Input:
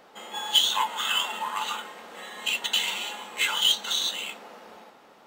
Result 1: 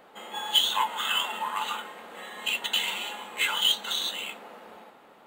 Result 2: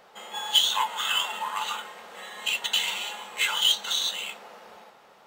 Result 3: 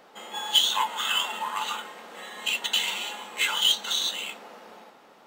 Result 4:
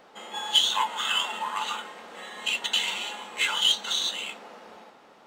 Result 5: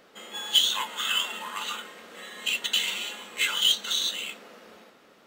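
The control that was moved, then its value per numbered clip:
parametric band, centre frequency: 5,500, 280, 72, 15,000, 850 Hertz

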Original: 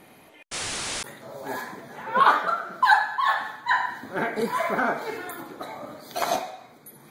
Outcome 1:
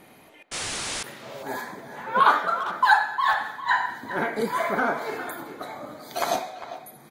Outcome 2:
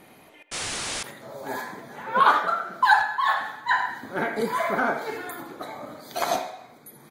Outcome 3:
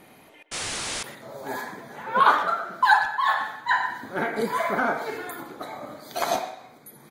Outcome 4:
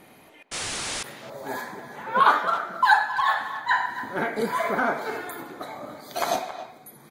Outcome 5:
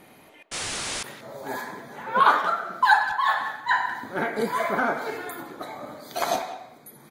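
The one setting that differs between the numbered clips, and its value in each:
far-end echo of a speakerphone, delay time: 400, 80, 120, 270, 180 milliseconds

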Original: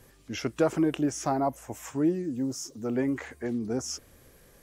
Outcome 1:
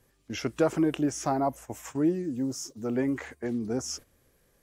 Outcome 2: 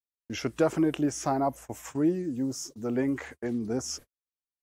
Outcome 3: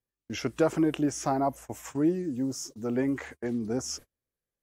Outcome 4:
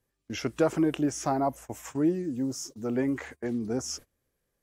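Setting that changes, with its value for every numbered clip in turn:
noise gate, range: −10, −57, −36, −23 decibels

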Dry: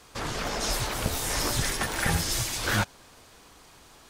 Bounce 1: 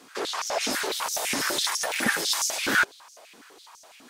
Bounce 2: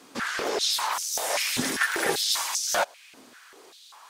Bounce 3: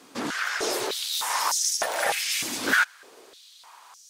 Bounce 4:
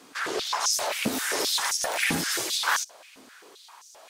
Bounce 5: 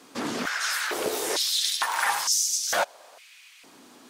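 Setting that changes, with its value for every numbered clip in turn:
high-pass on a step sequencer, speed: 12, 5.1, 3.3, 7.6, 2.2 Hertz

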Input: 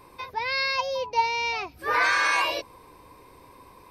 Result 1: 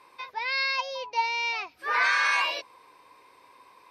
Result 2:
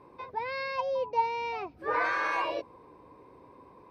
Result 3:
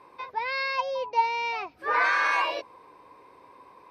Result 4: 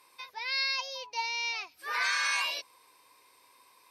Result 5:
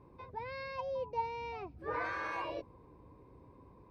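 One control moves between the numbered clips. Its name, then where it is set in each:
resonant band-pass, frequency: 2,400, 340, 940, 6,700, 110 Hertz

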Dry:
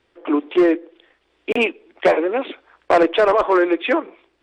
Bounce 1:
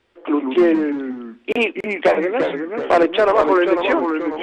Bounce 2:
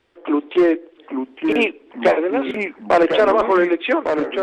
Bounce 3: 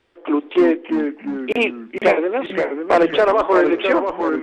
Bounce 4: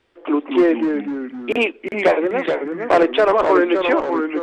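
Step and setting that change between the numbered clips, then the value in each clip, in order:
delay with pitch and tempo change per echo, delay time: 94, 798, 271, 174 milliseconds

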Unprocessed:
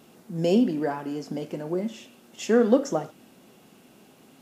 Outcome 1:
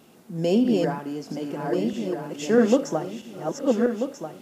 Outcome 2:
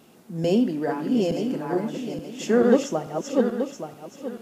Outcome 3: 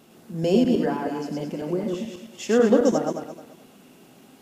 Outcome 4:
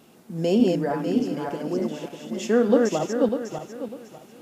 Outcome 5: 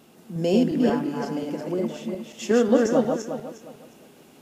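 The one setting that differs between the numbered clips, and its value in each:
feedback delay that plays each chunk backwards, delay time: 644, 438, 108, 299, 179 milliseconds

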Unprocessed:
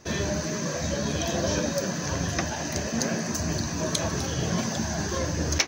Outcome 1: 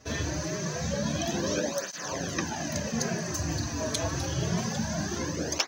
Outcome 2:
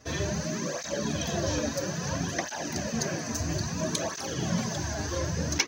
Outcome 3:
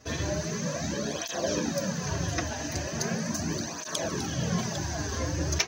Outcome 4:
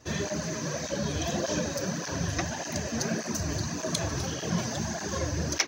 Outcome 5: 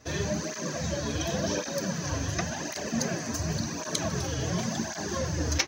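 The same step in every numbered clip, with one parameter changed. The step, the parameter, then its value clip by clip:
through-zero flanger with one copy inverted, nulls at: 0.26, 0.6, 0.39, 1.7, 0.91 Hertz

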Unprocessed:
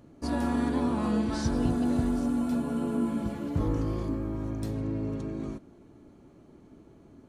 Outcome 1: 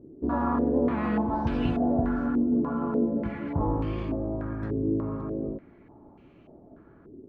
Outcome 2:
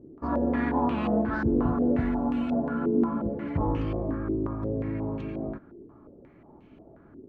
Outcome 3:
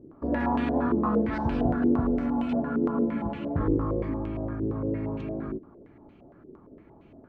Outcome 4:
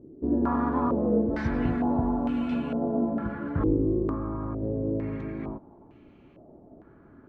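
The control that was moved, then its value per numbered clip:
low-pass on a step sequencer, speed: 3.4, 5.6, 8.7, 2.2 Hertz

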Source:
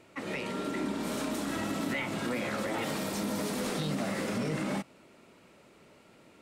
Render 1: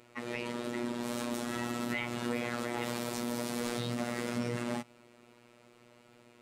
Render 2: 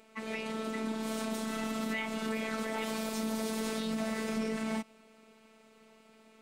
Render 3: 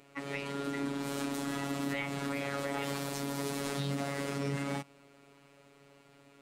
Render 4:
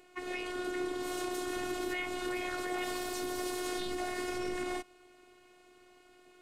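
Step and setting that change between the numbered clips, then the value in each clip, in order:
phases set to zero, frequency: 120, 220, 140, 360 Hertz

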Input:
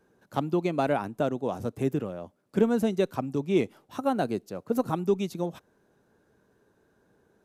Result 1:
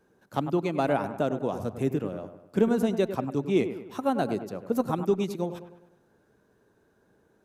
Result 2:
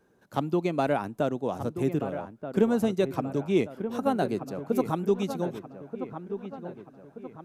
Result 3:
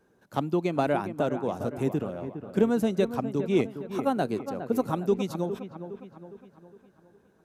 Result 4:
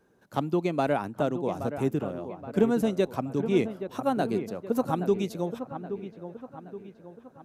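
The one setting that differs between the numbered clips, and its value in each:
delay with a low-pass on its return, delay time: 100, 1,230, 410, 823 milliseconds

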